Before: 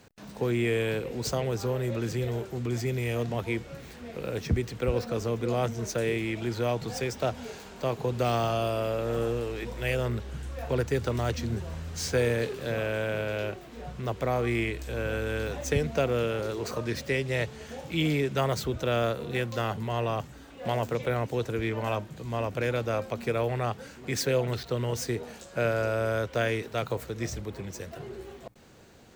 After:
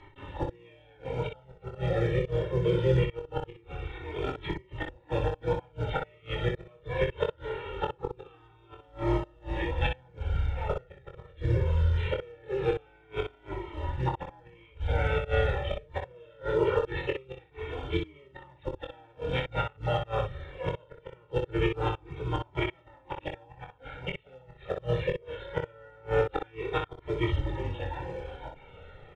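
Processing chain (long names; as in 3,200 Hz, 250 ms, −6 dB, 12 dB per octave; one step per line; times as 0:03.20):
rippled gain that drifts along the octave scale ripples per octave 0.79, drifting +2 Hz, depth 8 dB
pitch-shifted copies added −12 semitones −9 dB, +5 semitones −5 dB, +7 semitones −18 dB
gate with flip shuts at −17 dBFS, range −32 dB
on a send: ambience of single reflections 23 ms −5 dB, 61 ms −6 dB
on the sum: downsampling to 8,000 Hz
in parallel at −7 dB: floating-point word with a short mantissa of 2 bits
on the sum: high-frequency loss of the air 84 metres
comb filter 2.2 ms, depth 97%
flanger whose copies keep moving one way falling 0.22 Hz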